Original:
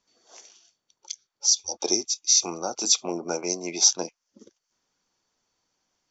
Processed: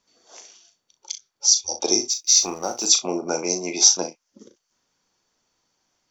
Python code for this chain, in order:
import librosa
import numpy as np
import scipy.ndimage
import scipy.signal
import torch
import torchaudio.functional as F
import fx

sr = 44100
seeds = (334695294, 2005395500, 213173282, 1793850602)

p1 = fx.law_mismatch(x, sr, coded='A', at=(2.09, 2.85), fade=0.02)
p2 = p1 + fx.room_early_taps(p1, sr, ms=(38, 63), db=(-8.0, -17.0), dry=0)
y = F.gain(torch.from_numpy(p2), 3.5).numpy()